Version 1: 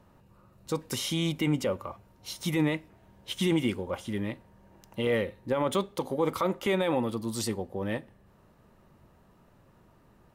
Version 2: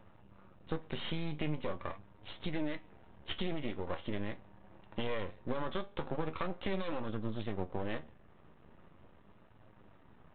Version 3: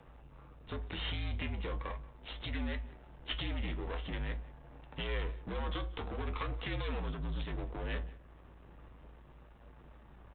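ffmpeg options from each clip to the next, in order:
-af "acompressor=threshold=-33dB:ratio=6,aresample=8000,aeval=exprs='max(val(0),0)':c=same,aresample=44100,flanger=delay=9.3:depth=4.2:regen=59:speed=0.42:shape=sinusoidal,volume=7dB"
-filter_complex "[0:a]acrossover=split=1300[a][b];[a]asoftclip=type=tanh:threshold=-34dB[c];[c][b]amix=inputs=2:normalize=0,afreqshift=-57,asplit=2[d][e];[e]adelay=180.8,volume=-21dB,highshelf=f=4k:g=-4.07[f];[d][f]amix=inputs=2:normalize=0,volume=3dB"

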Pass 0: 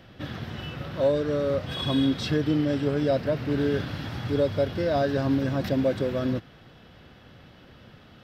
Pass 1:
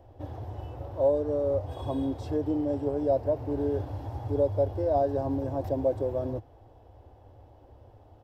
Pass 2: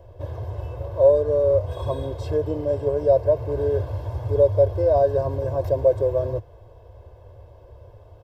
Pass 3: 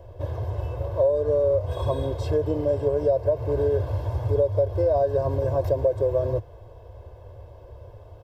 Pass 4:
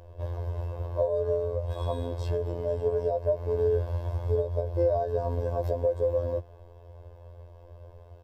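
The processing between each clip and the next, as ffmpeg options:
-af "firequalizer=gain_entry='entry(100,0);entry(170,-28);entry(290,-7);entry(860,0);entry(1300,-21);entry(2100,-24);entry(3900,-25);entry(7300,-13)':delay=0.05:min_phase=1,volume=3dB"
-af "aecho=1:1:1.9:0.8,volume=4dB"
-af "acompressor=threshold=-20dB:ratio=6,volume=2dB"
-af "afftfilt=real='hypot(re,im)*cos(PI*b)':imag='0':win_size=2048:overlap=0.75,volume=-1.5dB"

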